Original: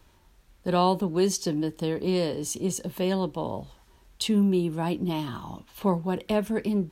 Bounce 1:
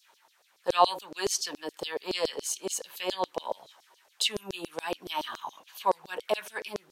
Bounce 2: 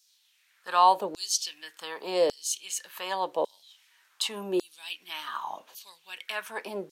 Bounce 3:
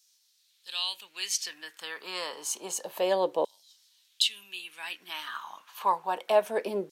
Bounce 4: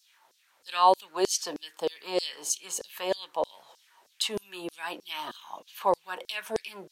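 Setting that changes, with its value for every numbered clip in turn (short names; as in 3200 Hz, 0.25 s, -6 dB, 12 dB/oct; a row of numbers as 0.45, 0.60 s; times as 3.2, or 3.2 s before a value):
LFO high-pass, rate: 7.1, 0.87, 0.29, 3.2 Hz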